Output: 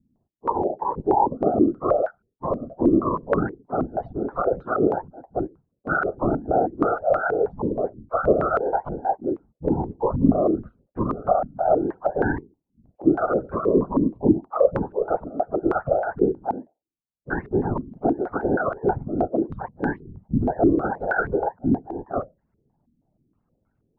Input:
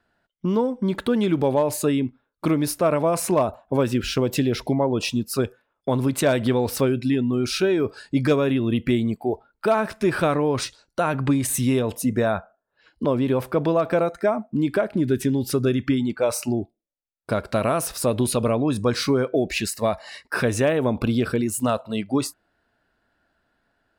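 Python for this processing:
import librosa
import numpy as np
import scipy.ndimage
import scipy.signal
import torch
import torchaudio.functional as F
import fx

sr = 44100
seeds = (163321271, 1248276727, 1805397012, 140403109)

y = fx.octave_mirror(x, sr, pivot_hz=420.0)
y = fx.whisperise(y, sr, seeds[0])
y = fx.filter_held_lowpass(y, sr, hz=6.3, low_hz=260.0, high_hz=1500.0)
y = F.gain(torch.from_numpy(y), -3.5).numpy()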